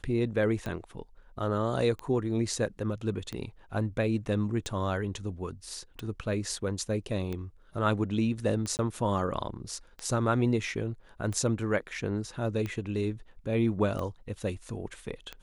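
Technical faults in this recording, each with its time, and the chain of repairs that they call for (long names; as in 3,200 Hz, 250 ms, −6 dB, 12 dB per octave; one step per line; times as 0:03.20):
scratch tick 45 rpm −22 dBFS
0:08.77–0:08.79: drop-out 19 ms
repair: click removal
repair the gap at 0:08.77, 19 ms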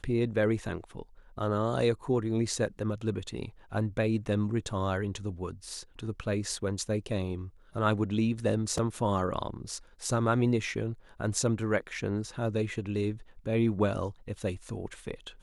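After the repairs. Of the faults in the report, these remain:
none of them is left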